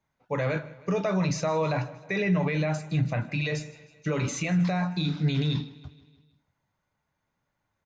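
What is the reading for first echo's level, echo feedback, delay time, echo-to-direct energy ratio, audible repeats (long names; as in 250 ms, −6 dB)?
−20.0 dB, 58%, 157 ms, −18.0 dB, 4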